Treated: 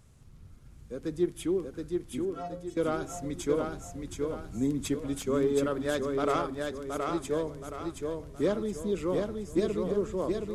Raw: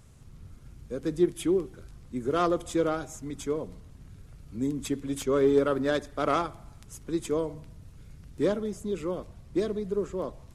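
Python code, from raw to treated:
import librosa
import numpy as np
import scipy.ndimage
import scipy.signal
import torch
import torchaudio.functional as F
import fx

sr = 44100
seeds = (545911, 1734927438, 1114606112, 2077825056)

y = fx.rider(x, sr, range_db=3, speed_s=0.5)
y = fx.stiff_resonator(y, sr, f0_hz=81.0, decay_s=0.7, stiffness=0.03, at=(2.25, 2.77))
y = fx.echo_feedback(y, sr, ms=722, feedback_pct=41, wet_db=-4.0)
y = y * librosa.db_to_amplitude(-2.0)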